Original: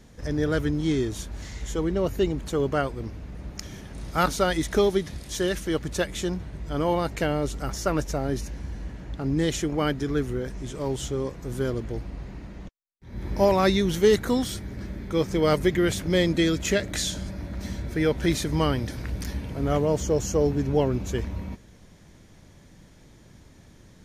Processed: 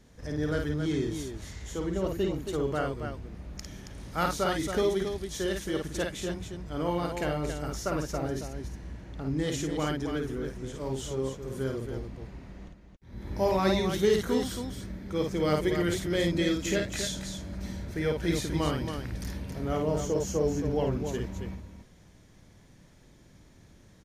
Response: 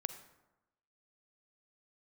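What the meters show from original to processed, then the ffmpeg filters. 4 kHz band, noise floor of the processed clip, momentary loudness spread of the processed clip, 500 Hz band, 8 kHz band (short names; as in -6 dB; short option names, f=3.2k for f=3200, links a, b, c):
-4.5 dB, -56 dBFS, 14 LU, -4.5 dB, -4.5 dB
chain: -af "aecho=1:1:52.48|274.1:0.631|0.447,volume=-6.5dB"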